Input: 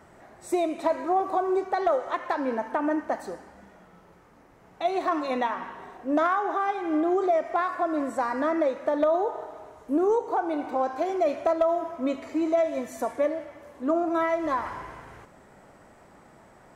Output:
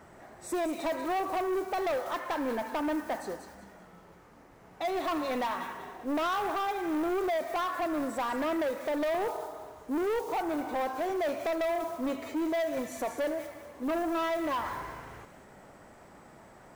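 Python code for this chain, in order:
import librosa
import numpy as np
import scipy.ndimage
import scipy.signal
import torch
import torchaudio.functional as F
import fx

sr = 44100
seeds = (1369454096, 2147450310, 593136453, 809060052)

y = fx.mod_noise(x, sr, seeds[0], snr_db=26)
y = fx.echo_wet_highpass(y, sr, ms=190, feedback_pct=30, hz=2600.0, wet_db=-6.0)
y = 10.0 ** (-27.0 / 20.0) * np.tanh(y / 10.0 ** (-27.0 / 20.0))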